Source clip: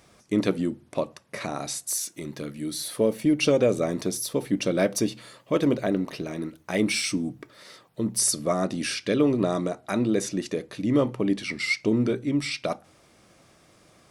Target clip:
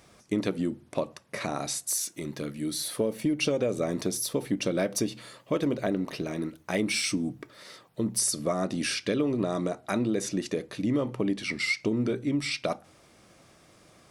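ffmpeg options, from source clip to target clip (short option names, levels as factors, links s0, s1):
-af "acompressor=threshold=0.0708:ratio=6"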